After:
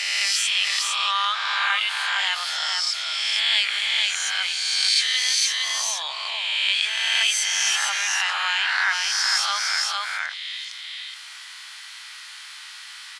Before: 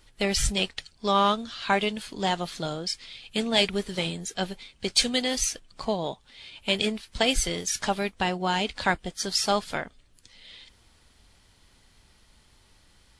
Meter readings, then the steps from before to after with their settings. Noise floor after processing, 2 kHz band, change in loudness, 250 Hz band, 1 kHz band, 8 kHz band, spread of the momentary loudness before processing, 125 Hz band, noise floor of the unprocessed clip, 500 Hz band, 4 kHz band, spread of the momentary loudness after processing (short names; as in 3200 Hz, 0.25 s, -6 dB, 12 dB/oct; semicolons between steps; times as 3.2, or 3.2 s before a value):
-40 dBFS, +10.0 dB, +6.0 dB, under -40 dB, 0.0 dB, +7.0 dB, 11 LU, under -40 dB, -60 dBFS, -18.0 dB, +9.0 dB, 19 LU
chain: spectral swells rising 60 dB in 1.28 s; HPF 1300 Hz 24 dB/oct; high shelf 7800 Hz -12 dB; on a send: echo 0.458 s -5 dB; on the sum: fast leveller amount 50%